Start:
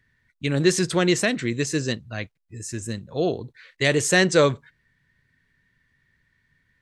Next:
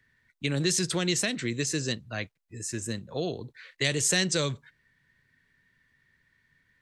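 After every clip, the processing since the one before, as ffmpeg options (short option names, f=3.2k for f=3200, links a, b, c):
-filter_complex "[0:a]lowshelf=f=170:g=-6.5,acrossover=split=190|2900[a][b][c];[b]acompressor=threshold=-30dB:ratio=5[d];[a][d][c]amix=inputs=3:normalize=0"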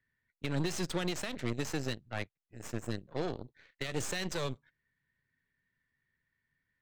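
-af "alimiter=limit=-18.5dB:level=0:latency=1:release=117,aeval=exprs='0.119*(cos(1*acos(clip(val(0)/0.119,-1,1)))-cos(1*PI/2))+0.0188*(cos(6*acos(clip(val(0)/0.119,-1,1)))-cos(6*PI/2))+0.0106*(cos(7*acos(clip(val(0)/0.119,-1,1)))-cos(7*PI/2))':c=same,highshelf=f=5.4k:g=-11.5,volume=-4.5dB"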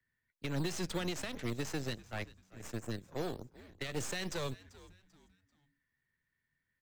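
-filter_complex "[0:a]asplit=4[a][b][c][d];[b]adelay=390,afreqshift=-94,volume=-19dB[e];[c]adelay=780,afreqshift=-188,volume=-28.4dB[f];[d]adelay=1170,afreqshift=-282,volume=-37.7dB[g];[a][e][f][g]amix=inputs=4:normalize=0,acrossover=split=120|510|4900[h][i][j][k];[i]acrusher=samples=9:mix=1:aa=0.000001:lfo=1:lforange=5.4:lforate=3.4[l];[h][l][j][k]amix=inputs=4:normalize=0,volume=-2.5dB"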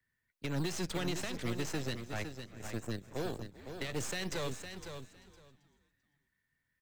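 -af "asoftclip=type=hard:threshold=-30.5dB,aecho=1:1:509|1018:0.376|0.0601,volume=1dB"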